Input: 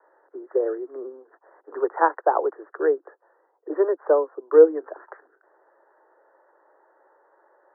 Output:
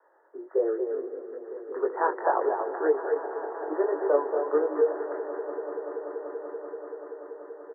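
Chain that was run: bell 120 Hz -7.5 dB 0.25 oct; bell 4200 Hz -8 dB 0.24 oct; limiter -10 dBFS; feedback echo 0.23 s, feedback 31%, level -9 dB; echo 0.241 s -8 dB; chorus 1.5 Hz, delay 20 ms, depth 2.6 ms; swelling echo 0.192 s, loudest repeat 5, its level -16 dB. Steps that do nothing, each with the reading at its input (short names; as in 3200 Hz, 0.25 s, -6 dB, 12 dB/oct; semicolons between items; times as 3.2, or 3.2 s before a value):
bell 120 Hz: input band starts at 290 Hz; bell 4200 Hz: input band ends at 1300 Hz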